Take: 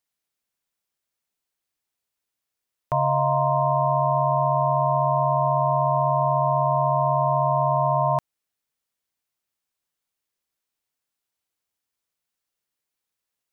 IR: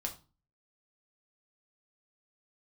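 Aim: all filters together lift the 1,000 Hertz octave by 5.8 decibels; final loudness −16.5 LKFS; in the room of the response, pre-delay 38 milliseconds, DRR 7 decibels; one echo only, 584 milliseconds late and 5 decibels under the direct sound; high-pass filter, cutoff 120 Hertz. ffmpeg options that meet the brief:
-filter_complex "[0:a]highpass=120,equalizer=frequency=1000:width_type=o:gain=6.5,aecho=1:1:584:0.562,asplit=2[link_01][link_02];[1:a]atrim=start_sample=2205,adelay=38[link_03];[link_02][link_03]afir=irnorm=-1:irlink=0,volume=-7.5dB[link_04];[link_01][link_04]amix=inputs=2:normalize=0,volume=2dB"

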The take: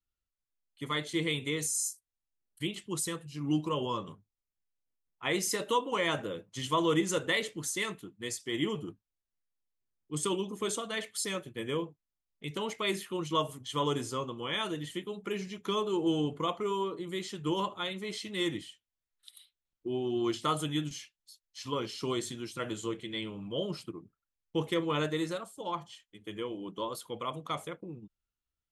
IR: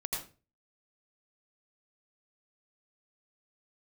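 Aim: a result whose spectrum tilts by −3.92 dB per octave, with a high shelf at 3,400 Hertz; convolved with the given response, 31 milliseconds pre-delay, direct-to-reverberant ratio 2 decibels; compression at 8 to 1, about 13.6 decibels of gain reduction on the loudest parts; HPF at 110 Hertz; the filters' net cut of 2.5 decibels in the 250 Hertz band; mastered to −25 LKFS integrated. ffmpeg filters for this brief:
-filter_complex "[0:a]highpass=110,equalizer=frequency=250:width_type=o:gain=-3.5,highshelf=frequency=3400:gain=-6,acompressor=threshold=-39dB:ratio=8,asplit=2[link_01][link_02];[1:a]atrim=start_sample=2205,adelay=31[link_03];[link_02][link_03]afir=irnorm=-1:irlink=0,volume=-5dB[link_04];[link_01][link_04]amix=inputs=2:normalize=0,volume=17dB"

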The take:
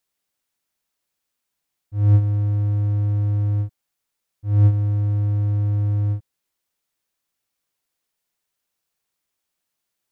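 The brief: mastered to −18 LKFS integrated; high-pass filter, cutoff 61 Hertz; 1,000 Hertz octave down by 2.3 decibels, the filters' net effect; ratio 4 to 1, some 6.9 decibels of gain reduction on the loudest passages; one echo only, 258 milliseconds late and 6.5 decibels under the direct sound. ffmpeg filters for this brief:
ffmpeg -i in.wav -af "highpass=61,equalizer=frequency=1000:width_type=o:gain=-3.5,acompressor=threshold=-20dB:ratio=4,aecho=1:1:258:0.473,volume=9.5dB" out.wav

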